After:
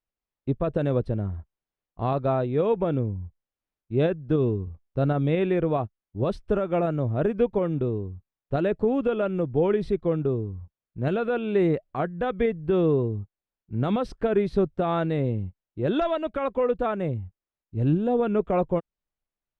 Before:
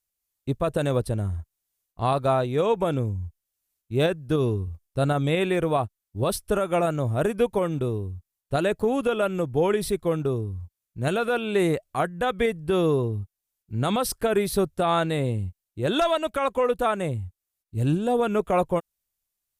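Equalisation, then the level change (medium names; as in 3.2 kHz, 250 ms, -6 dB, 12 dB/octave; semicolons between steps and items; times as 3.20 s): dynamic bell 950 Hz, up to -5 dB, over -36 dBFS, Q 0.85; tape spacing loss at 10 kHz 38 dB; peaking EQ 82 Hz -7 dB 1.1 oct; +3.5 dB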